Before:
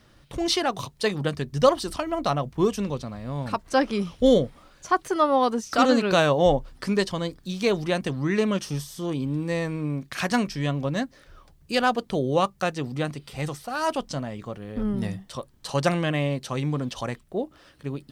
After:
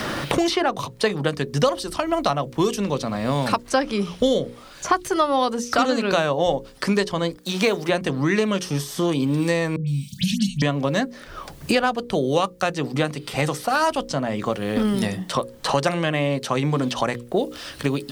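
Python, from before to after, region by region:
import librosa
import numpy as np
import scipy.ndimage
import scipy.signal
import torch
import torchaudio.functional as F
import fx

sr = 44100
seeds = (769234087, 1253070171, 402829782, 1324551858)

y = fx.chain(x, sr, fx.law_mismatch(coded='A'),
    fx.highpass(hz=270.0, slope=6),
    fx.high_shelf(hz=4700.0, db=8.5), at=(7.36, 7.89))
y = fx.chain(y, sr, fx.cheby1_bandstop(low_hz=200.0, high_hz=3100.0, order=4),
    fx.dispersion(late='highs', ms=115.0, hz=1400.0), at=(9.76, 10.62))
y = fx.low_shelf(y, sr, hz=150.0, db=-8.0)
y = fx.hum_notches(y, sr, base_hz=60, count=9)
y = fx.band_squash(y, sr, depth_pct=100)
y = y * librosa.db_to_amplitude(4.0)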